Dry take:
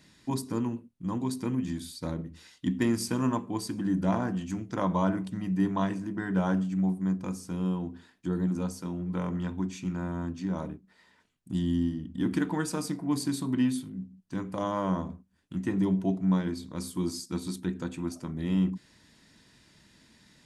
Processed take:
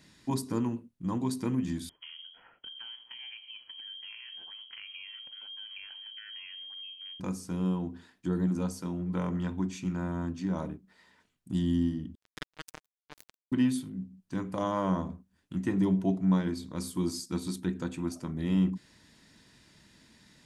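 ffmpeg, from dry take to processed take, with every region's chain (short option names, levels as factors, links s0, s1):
-filter_complex "[0:a]asettb=1/sr,asplit=3[s0][s1][s2];[s0]atrim=end=1.894[s3];[s1]atrim=start=1.89:end=7.2,asetpts=PTS-STARTPTS,afade=t=in:d=0.004:c=qsin,afade=t=out:st=5.306:d=0.004:c=qsin,highpass=f=260:p=1,acompressor=threshold=0.00708:ratio=5:attack=3.2:release=140:knee=1:detection=peak,lowpass=f=2900:t=q:w=0.5098,lowpass=f=2900:t=q:w=0.6013,lowpass=f=2900:t=q:w=0.9,lowpass=f=2900:t=q:w=2.563,afreqshift=-3400[s4];[s2]atrim=start=7.196[s5];[s3][s4]acrossfade=d=0.004:c1=hsin:c2=qsin[s6];[s6][s5]acrossfade=d=0.004:c1=qsin:c2=hsin,asettb=1/sr,asplit=3[s7][s8][s9];[s7]atrim=end=12.154[s10];[s8]atrim=start=12.15:end=13.52,asetpts=PTS-STARTPTS,afade=t=in:d=0.004:c=qsin,afade=t=out:st=1.366:d=0.004:c=qsin,highpass=f=820:p=1,acrusher=bits=3:mix=0:aa=0.5[s11];[s9]atrim=start=13.516[s12];[s10][s11]acrossfade=d=0.004:c1=hsin:c2=qsin[s13];[s13][s12]acrossfade=d=0.004:c1=qsin:c2=hsin"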